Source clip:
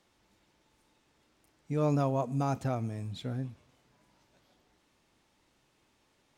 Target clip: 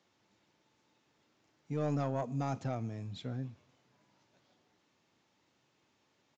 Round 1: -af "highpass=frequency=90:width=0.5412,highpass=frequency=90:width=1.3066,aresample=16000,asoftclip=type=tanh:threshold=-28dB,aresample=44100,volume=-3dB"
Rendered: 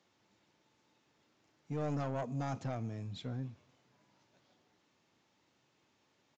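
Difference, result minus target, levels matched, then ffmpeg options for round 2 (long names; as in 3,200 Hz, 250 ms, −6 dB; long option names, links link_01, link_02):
soft clipping: distortion +6 dB
-af "highpass=frequency=90:width=0.5412,highpass=frequency=90:width=1.3066,aresample=16000,asoftclip=type=tanh:threshold=-22dB,aresample=44100,volume=-3dB"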